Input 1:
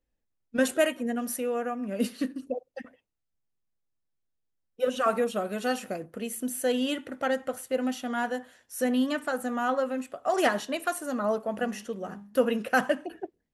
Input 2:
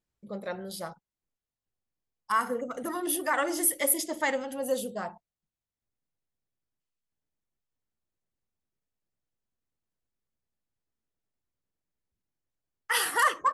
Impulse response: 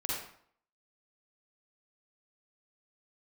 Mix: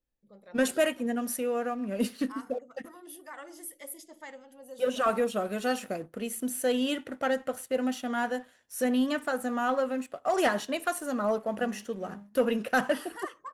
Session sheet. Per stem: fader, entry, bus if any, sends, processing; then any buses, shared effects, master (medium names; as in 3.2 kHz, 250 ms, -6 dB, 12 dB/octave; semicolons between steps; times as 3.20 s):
-4.0 dB, 0.00 s, no send, waveshaping leveller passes 1
-17.0 dB, 0.00 s, no send, none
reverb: none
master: none